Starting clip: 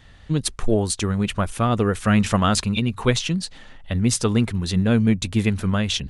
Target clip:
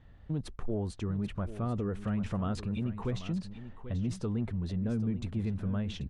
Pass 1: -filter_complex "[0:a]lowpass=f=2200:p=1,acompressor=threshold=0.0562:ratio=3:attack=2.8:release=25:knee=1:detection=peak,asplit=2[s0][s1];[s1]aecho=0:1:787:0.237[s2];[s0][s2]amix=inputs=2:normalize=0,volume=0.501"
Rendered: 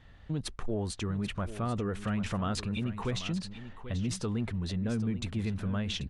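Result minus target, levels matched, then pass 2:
2 kHz band +7.0 dB
-filter_complex "[0:a]lowpass=f=620:p=1,acompressor=threshold=0.0562:ratio=3:attack=2.8:release=25:knee=1:detection=peak,asplit=2[s0][s1];[s1]aecho=0:1:787:0.237[s2];[s0][s2]amix=inputs=2:normalize=0,volume=0.501"

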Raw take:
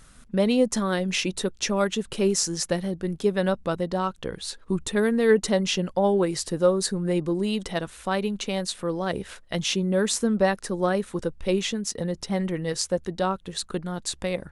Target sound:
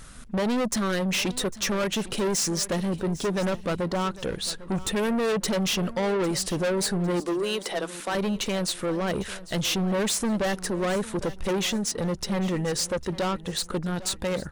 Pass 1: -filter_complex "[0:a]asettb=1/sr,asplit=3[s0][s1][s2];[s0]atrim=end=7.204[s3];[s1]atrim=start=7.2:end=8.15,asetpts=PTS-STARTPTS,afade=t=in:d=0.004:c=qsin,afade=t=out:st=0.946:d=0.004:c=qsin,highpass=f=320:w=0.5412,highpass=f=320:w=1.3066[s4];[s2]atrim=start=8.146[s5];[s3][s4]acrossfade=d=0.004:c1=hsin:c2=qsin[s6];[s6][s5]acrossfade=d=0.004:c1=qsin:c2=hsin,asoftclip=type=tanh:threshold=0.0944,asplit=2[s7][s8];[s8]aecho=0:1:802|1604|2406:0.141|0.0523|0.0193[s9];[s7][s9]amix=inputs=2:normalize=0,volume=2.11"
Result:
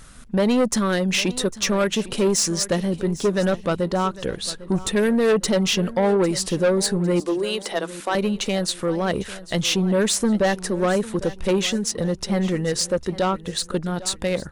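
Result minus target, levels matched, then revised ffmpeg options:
saturation: distortion -6 dB
-filter_complex "[0:a]asettb=1/sr,asplit=3[s0][s1][s2];[s0]atrim=end=7.204[s3];[s1]atrim=start=7.2:end=8.15,asetpts=PTS-STARTPTS,afade=t=in:d=0.004:c=qsin,afade=t=out:st=0.946:d=0.004:c=qsin,highpass=f=320:w=0.5412,highpass=f=320:w=1.3066[s4];[s2]atrim=start=8.146[s5];[s3][s4]acrossfade=d=0.004:c1=hsin:c2=qsin[s6];[s6][s5]acrossfade=d=0.004:c1=qsin:c2=hsin,asoftclip=type=tanh:threshold=0.0335,asplit=2[s7][s8];[s8]aecho=0:1:802|1604|2406:0.141|0.0523|0.0193[s9];[s7][s9]amix=inputs=2:normalize=0,volume=2.11"

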